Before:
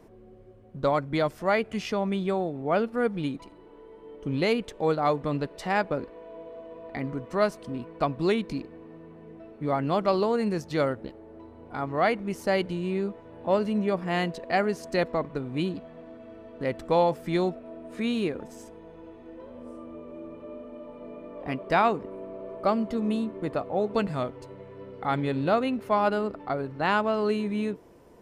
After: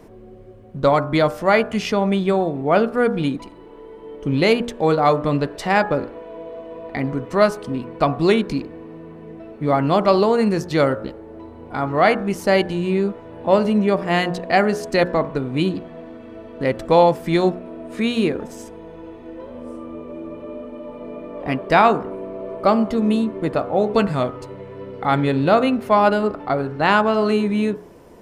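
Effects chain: de-hum 59.67 Hz, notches 30; gain +9 dB

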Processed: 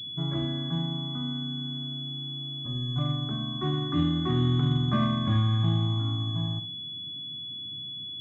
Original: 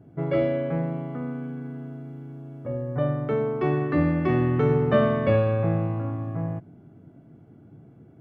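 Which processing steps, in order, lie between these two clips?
fixed phaser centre 1300 Hz, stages 4; notch comb 440 Hz; flutter echo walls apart 11 m, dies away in 0.32 s; pulse-width modulation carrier 3400 Hz

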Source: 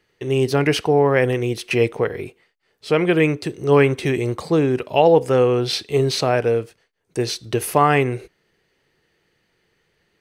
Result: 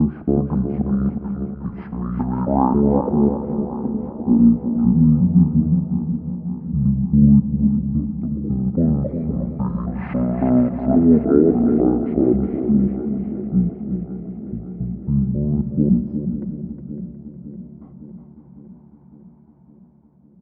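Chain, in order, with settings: slices in reverse order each 0.137 s, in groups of 6; HPF 210 Hz 6 dB/oct; Schroeder reverb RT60 0.43 s, combs from 28 ms, DRR 15.5 dB; LFO low-pass sine 0.24 Hz 290–1600 Hz; feedback echo 0.181 s, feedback 41%, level -8 dB; speed mistake 15 ips tape played at 7.5 ips; warbling echo 0.557 s, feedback 68%, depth 56 cents, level -13.5 dB; gain -1.5 dB

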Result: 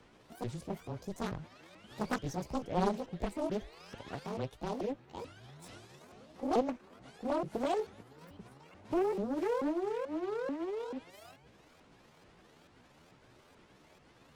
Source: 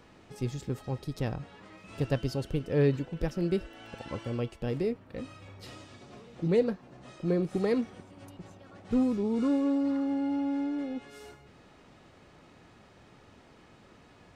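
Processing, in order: repeated pitch sweeps +12 st, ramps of 0.437 s; frequency shift -15 Hz; Doppler distortion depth 0.75 ms; gain -4 dB

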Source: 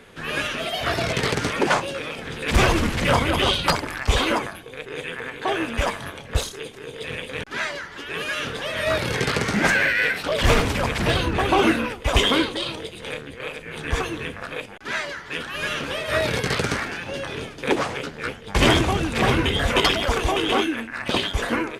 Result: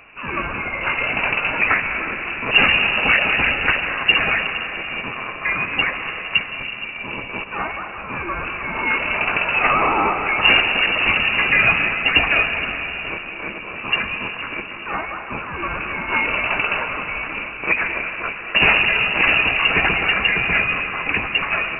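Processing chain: on a send at -5.5 dB: reverb RT60 4.1 s, pre-delay 0.118 s; on the sum: inverted band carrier 2800 Hz; gain +2 dB

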